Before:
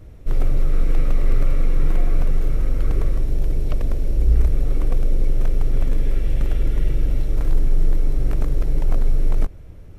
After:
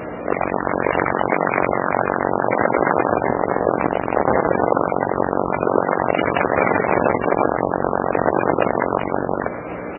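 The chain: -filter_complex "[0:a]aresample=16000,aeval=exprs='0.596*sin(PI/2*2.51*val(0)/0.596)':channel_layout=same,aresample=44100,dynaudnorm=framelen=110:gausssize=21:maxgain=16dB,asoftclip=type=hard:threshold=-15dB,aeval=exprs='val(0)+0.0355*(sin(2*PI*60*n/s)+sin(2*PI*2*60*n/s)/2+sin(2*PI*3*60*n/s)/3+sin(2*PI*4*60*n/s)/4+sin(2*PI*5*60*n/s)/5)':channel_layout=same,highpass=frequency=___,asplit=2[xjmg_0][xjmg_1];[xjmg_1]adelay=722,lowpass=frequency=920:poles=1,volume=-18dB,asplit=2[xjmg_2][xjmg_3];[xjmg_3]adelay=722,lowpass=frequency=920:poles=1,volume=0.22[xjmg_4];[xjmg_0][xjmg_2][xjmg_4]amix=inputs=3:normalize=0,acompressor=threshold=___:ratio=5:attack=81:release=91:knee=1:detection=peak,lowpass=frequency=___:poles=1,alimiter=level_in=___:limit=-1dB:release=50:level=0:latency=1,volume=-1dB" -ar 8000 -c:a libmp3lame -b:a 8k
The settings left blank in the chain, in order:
720, -40dB, 1.2k, 23dB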